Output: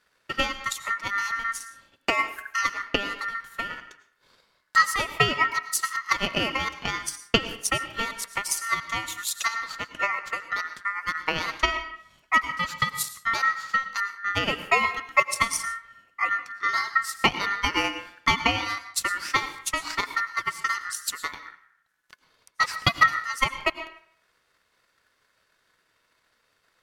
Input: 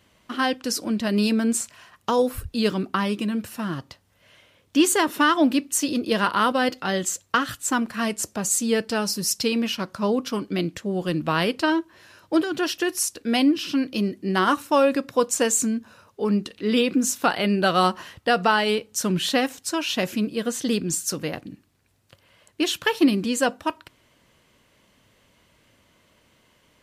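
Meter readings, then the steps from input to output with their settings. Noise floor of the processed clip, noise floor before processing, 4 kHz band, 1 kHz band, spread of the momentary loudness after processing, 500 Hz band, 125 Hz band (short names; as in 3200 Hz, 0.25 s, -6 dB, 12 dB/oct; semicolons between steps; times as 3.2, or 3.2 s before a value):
-70 dBFS, -62 dBFS, -1.0 dB, -0.5 dB, 9 LU, -11.5 dB, -6.5 dB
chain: transient shaper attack +11 dB, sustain -4 dB; digital reverb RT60 0.62 s, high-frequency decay 0.55×, pre-delay 65 ms, DRR 11.5 dB; ring modulator 1600 Hz; gain -6 dB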